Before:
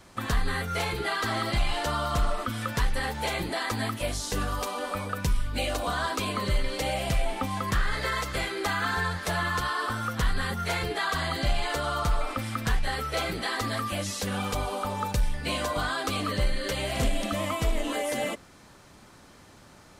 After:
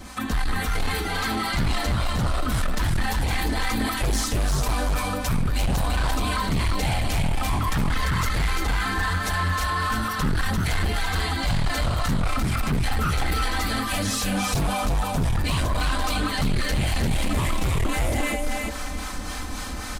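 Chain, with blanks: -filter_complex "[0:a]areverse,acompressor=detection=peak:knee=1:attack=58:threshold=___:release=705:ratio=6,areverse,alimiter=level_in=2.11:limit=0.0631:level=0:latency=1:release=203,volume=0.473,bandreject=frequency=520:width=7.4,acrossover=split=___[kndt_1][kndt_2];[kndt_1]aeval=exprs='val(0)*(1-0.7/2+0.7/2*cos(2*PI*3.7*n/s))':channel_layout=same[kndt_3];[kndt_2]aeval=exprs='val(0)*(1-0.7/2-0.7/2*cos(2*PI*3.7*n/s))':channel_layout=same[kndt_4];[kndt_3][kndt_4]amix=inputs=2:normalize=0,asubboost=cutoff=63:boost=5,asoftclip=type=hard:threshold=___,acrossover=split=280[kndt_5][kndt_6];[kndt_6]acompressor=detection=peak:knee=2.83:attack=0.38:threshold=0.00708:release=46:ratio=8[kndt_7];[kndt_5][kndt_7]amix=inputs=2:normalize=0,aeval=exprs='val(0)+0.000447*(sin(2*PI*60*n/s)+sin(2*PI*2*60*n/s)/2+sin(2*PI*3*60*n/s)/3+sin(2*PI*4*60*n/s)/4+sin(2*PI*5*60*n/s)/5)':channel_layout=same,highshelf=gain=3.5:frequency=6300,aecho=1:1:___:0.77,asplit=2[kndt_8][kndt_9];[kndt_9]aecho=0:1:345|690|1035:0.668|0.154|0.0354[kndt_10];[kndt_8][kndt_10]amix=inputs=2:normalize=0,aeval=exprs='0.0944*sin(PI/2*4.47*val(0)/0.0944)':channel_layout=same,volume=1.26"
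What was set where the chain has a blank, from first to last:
0.0158, 570, 0.0398, 3.9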